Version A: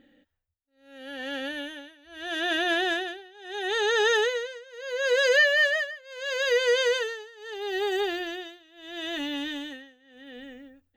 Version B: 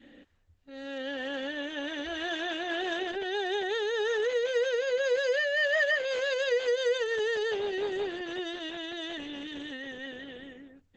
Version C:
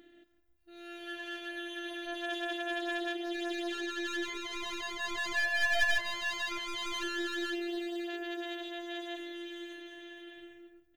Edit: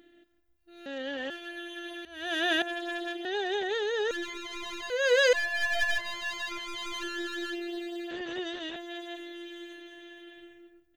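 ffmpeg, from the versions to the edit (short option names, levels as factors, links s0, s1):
-filter_complex "[1:a]asplit=3[s0][s1][s2];[0:a]asplit=2[s3][s4];[2:a]asplit=6[s5][s6][s7][s8][s9][s10];[s5]atrim=end=0.862[s11];[s0]atrim=start=0.858:end=1.302[s12];[s6]atrim=start=1.298:end=2.052[s13];[s3]atrim=start=2.048:end=2.622[s14];[s7]atrim=start=2.618:end=3.252[s15];[s1]atrim=start=3.248:end=4.112[s16];[s8]atrim=start=4.108:end=4.902[s17];[s4]atrim=start=4.898:end=5.332[s18];[s9]atrim=start=5.328:end=8.112[s19];[s2]atrim=start=8.108:end=8.762[s20];[s10]atrim=start=8.758[s21];[s11][s12]acrossfade=d=0.004:c1=hsin:c2=hsin[s22];[s22][s13]acrossfade=d=0.004:c1=hsin:c2=hsin[s23];[s23][s14]acrossfade=d=0.004:c1=hsin:c2=hsin[s24];[s24][s15]acrossfade=d=0.004:c1=hsin:c2=hsin[s25];[s25][s16]acrossfade=d=0.004:c1=hsin:c2=hsin[s26];[s26][s17]acrossfade=d=0.004:c1=hsin:c2=hsin[s27];[s27][s18]acrossfade=d=0.004:c1=hsin:c2=hsin[s28];[s28][s19]acrossfade=d=0.004:c1=hsin:c2=hsin[s29];[s29][s20]acrossfade=d=0.004:c1=hsin:c2=hsin[s30];[s30][s21]acrossfade=d=0.004:c1=hsin:c2=hsin"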